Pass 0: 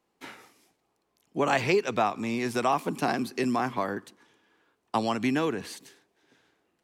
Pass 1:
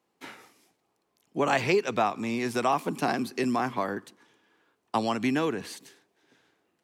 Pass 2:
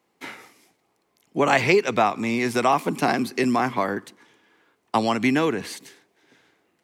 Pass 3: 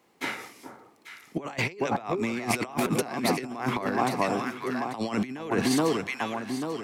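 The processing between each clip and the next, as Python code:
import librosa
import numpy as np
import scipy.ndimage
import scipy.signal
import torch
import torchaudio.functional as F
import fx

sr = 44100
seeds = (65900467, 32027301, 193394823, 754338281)

y1 = scipy.signal.sosfilt(scipy.signal.butter(2, 80.0, 'highpass', fs=sr, output='sos'), x)
y2 = fx.peak_eq(y1, sr, hz=2100.0, db=5.5, octaves=0.22)
y2 = F.gain(torch.from_numpy(y2), 5.5).numpy()
y3 = fx.echo_alternate(y2, sr, ms=420, hz=1200.0, feedback_pct=64, wet_db=-8)
y3 = fx.over_compress(y3, sr, threshold_db=-27.0, ratio=-0.5)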